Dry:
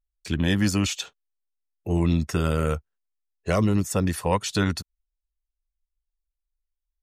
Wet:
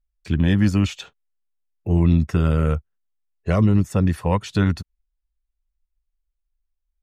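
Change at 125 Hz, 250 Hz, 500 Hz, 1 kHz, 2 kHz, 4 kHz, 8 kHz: +6.5, +4.5, +0.5, 0.0, -0.5, -4.0, -9.0 dB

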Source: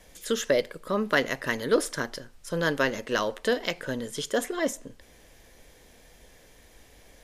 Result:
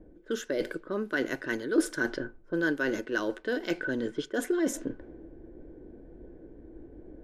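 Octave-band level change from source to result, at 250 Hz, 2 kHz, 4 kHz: +2.0, -2.0, -9.0 dB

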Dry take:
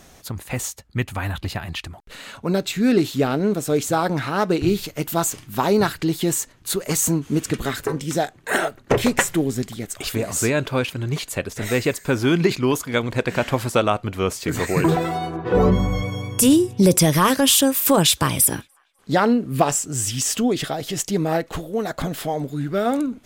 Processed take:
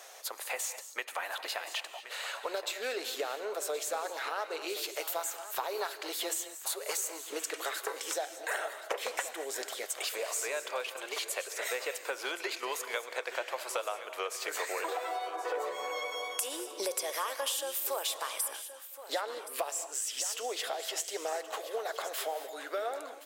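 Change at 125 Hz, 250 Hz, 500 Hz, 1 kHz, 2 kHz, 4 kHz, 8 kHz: under -40 dB, -31.0 dB, -14.5 dB, -12.0 dB, -10.0 dB, -10.5 dB, -12.0 dB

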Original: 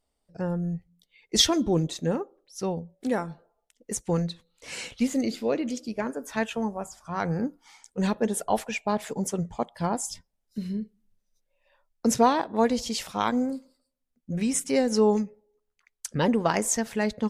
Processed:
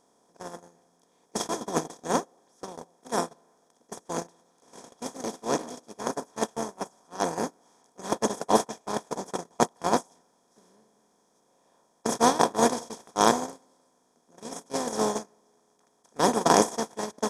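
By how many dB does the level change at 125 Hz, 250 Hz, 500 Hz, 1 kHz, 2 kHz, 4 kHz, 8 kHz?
-9.0, -5.5, -1.0, +3.0, -1.0, -5.0, -1.0 dB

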